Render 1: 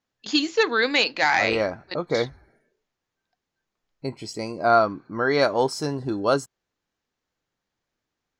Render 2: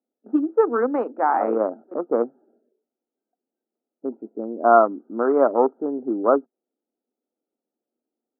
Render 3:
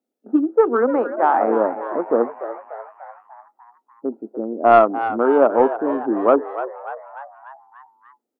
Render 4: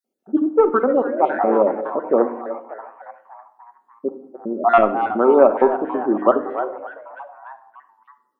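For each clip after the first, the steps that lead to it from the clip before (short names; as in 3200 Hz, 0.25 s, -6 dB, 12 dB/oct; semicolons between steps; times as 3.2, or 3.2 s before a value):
Wiener smoothing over 41 samples; Chebyshev band-pass 230–1300 Hz, order 4; gain +5 dB
soft clip -3.5 dBFS, distortion -23 dB; frequency-shifting echo 0.295 s, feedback 57%, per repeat +98 Hz, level -12 dB; gain +3.5 dB
random spectral dropouts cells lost 30%; shoebox room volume 1900 m³, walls furnished, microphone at 1.1 m; gain +1.5 dB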